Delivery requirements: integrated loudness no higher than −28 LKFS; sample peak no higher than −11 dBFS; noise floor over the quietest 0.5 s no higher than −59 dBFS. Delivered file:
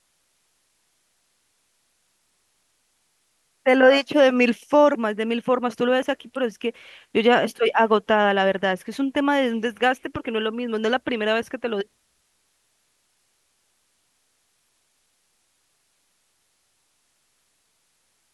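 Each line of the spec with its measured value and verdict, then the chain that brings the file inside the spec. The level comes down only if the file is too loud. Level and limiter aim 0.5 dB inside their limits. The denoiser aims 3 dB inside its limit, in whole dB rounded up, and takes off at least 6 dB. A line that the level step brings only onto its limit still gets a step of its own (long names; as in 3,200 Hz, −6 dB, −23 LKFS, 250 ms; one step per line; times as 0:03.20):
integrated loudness −21.5 LKFS: out of spec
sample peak −5.0 dBFS: out of spec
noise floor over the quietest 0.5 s −68 dBFS: in spec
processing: level −7 dB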